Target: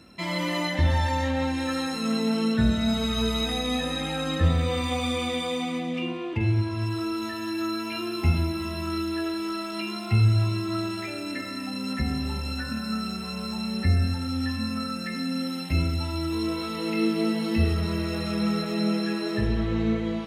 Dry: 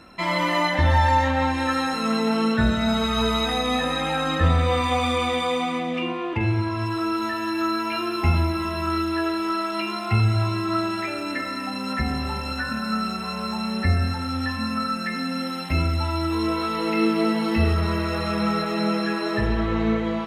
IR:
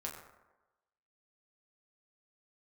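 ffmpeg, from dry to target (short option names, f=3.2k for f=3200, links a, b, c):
-filter_complex "[0:a]highpass=52,equalizer=f=1.1k:t=o:w=2.2:g=-10.5,asplit=2[a][b];[1:a]atrim=start_sample=2205,adelay=53[c];[b][c]afir=irnorm=-1:irlink=0,volume=-14.5dB[d];[a][d]amix=inputs=2:normalize=0"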